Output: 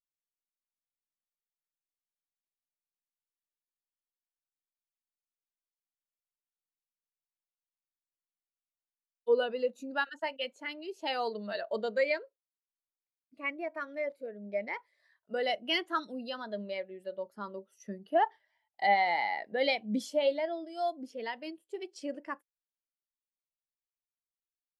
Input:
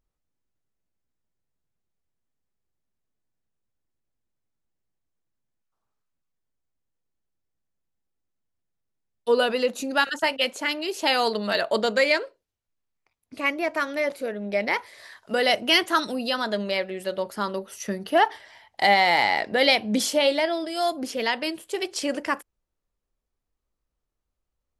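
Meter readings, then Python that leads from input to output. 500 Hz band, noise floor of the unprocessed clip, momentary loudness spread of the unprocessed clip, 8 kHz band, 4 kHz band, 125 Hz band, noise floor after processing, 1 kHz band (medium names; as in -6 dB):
-8.0 dB, -82 dBFS, 10 LU, under -20 dB, -13.5 dB, no reading, under -85 dBFS, -8.0 dB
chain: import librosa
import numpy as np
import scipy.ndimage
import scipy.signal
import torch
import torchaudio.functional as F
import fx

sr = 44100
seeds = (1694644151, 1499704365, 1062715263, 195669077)

y = fx.spectral_expand(x, sr, expansion=1.5)
y = F.gain(torch.from_numpy(y), -8.5).numpy()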